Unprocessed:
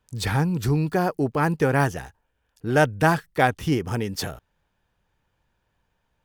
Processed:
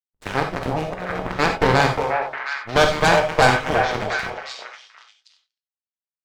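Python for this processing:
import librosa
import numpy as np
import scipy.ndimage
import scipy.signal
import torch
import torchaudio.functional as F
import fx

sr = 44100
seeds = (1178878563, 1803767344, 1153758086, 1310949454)

p1 = fx.reverse_delay_fb(x, sr, ms=120, feedback_pct=65, wet_db=-9.0)
p2 = scipy.signal.sosfilt(scipy.signal.butter(2, 9500.0, 'lowpass', fs=sr, output='sos'), p1)
p3 = fx.bass_treble(p2, sr, bass_db=-13, treble_db=-13)
p4 = fx.over_compress(p3, sr, threshold_db=-28.0, ratio=-0.5, at=(0.51, 1.38), fade=0.02)
p5 = fx.leveller(p4, sr, passes=1)
p6 = fx.backlash(p5, sr, play_db=-26.0)
p7 = fx.cheby_harmonics(p6, sr, harmonics=(6, 7), levels_db=(-11, -17), full_scale_db=-4.5)
p8 = p7 + fx.echo_stepped(p7, sr, ms=357, hz=660.0, octaves=1.4, feedback_pct=70, wet_db=-1.5, dry=0)
p9 = fx.rev_gated(p8, sr, seeds[0], gate_ms=110, shape='flat', drr_db=3.5)
y = p9 * 10.0 ** (-1.0 / 20.0)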